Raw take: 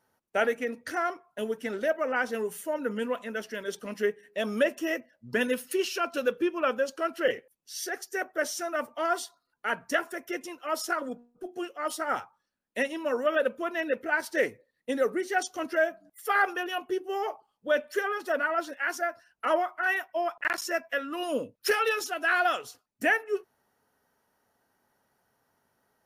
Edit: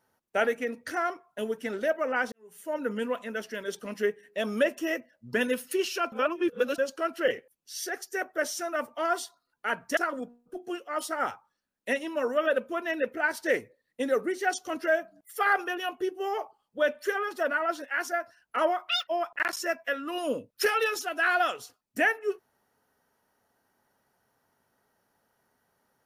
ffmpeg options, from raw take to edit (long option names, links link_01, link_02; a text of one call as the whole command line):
ffmpeg -i in.wav -filter_complex "[0:a]asplit=7[link_01][link_02][link_03][link_04][link_05][link_06][link_07];[link_01]atrim=end=2.32,asetpts=PTS-STARTPTS,afade=type=out:start_time=2.316:duration=0.004:curve=hsin[link_08];[link_02]atrim=start=2.32:end=6.122,asetpts=PTS-STARTPTS,afade=type=in:duration=0.43:curve=qua[link_09];[link_03]atrim=start=6.118:end=6.782,asetpts=PTS-STARTPTS,areverse[link_10];[link_04]atrim=start=6.778:end=9.972[link_11];[link_05]atrim=start=10.858:end=19.784[link_12];[link_06]atrim=start=19.78:end=20.12,asetpts=PTS-STARTPTS,asetrate=83349,aresample=44100,atrim=end_sample=7933,asetpts=PTS-STARTPTS[link_13];[link_07]atrim=start=20.116[link_14];[link_08][link_09]concat=n=2:v=0:a=1[link_15];[link_15][link_10]acrossfade=duration=0.004:curve1=hsin:curve2=hsin[link_16];[link_16][link_11]acrossfade=duration=0.004:curve1=hsin:curve2=hsin[link_17];[link_17][link_12]acrossfade=duration=0.004:curve1=hsin:curve2=hsin[link_18];[link_18][link_13]acrossfade=duration=0.004:curve1=hsin:curve2=hsin[link_19];[link_19][link_14]acrossfade=duration=0.004:curve1=hsin:curve2=hsin" out.wav